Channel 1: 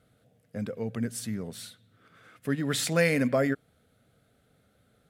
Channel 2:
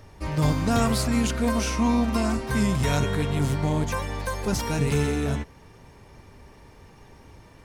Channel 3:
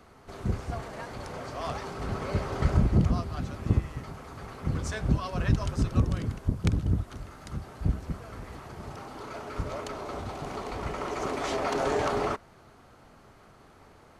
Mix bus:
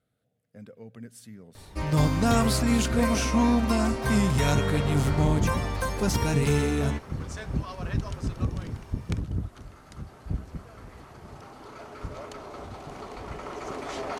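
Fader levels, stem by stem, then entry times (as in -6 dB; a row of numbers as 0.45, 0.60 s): -12.0, 0.0, -4.0 dB; 0.00, 1.55, 2.45 s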